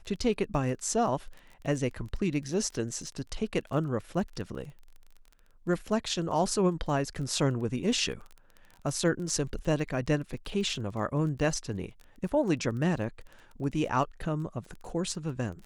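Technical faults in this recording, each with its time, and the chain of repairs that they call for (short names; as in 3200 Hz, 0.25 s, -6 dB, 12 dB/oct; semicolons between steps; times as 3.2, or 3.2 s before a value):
crackle 20/s -38 dBFS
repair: de-click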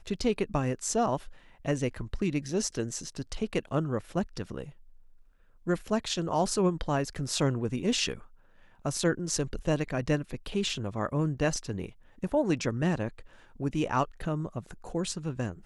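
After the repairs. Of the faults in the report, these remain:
none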